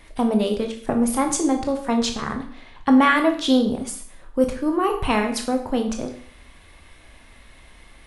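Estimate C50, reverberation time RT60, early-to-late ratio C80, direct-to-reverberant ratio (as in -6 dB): 9.0 dB, 0.50 s, 12.5 dB, 4.0 dB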